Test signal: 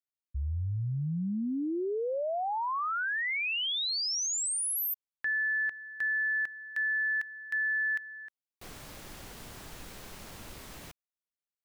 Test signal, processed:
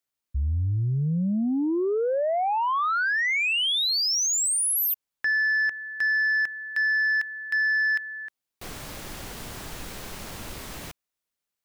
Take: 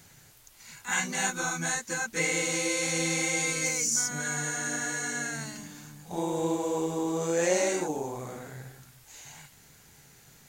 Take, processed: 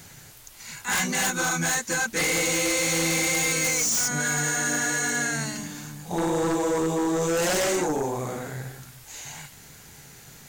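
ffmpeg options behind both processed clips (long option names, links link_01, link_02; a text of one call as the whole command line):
ffmpeg -i in.wav -af "aeval=exprs='0.251*sin(PI/2*4.47*val(0)/0.251)':channel_layout=same,volume=-8.5dB" out.wav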